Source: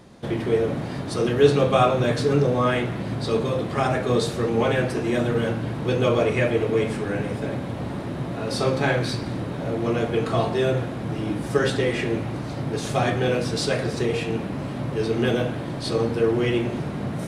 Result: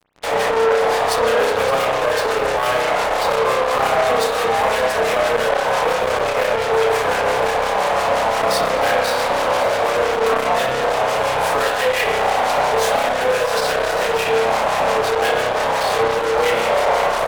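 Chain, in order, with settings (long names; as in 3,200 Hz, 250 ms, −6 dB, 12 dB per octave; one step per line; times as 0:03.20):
Butterworth high-pass 440 Hz 96 dB per octave
parametric band 880 Hz +12 dB 1.5 octaves
downward compressor 4 to 1, threshold −25 dBFS, peak gain reduction 16.5 dB
fuzz pedal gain 34 dB, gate −38 dBFS
two-band tremolo in antiphase 5.8 Hz, depth 70%, crossover 1,300 Hz
on a send: single-tap delay 568 ms −12 dB
on the sum: spring reverb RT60 1.1 s, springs 31 ms, chirp 35 ms, DRR −1 dB
saturating transformer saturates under 980 Hz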